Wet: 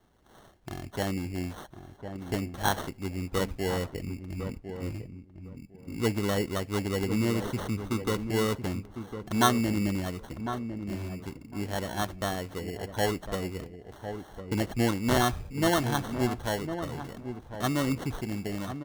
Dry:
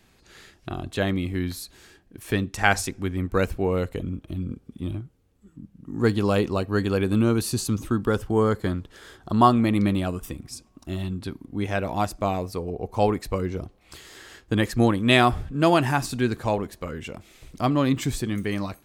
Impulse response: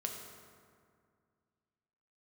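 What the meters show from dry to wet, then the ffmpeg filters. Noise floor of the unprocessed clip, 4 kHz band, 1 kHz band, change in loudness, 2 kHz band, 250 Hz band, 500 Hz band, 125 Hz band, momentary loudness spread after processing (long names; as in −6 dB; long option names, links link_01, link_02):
−60 dBFS, −4.0 dB, −6.5 dB, −6.5 dB, −6.5 dB, −6.0 dB, −6.5 dB, −6.0 dB, 15 LU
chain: -filter_complex "[0:a]acrusher=samples=18:mix=1:aa=0.000001,asplit=2[link_01][link_02];[link_02]adelay=1054,lowpass=frequency=990:poles=1,volume=-8dB,asplit=2[link_03][link_04];[link_04]adelay=1054,lowpass=frequency=990:poles=1,volume=0.19,asplit=2[link_05][link_06];[link_06]adelay=1054,lowpass=frequency=990:poles=1,volume=0.19[link_07];[link_03][link_05][link_07]amix=inputs=3:normalize=0[link_08];[link_01][link_08]amix=inputs=2:normalize=0,volume=-6.5dB"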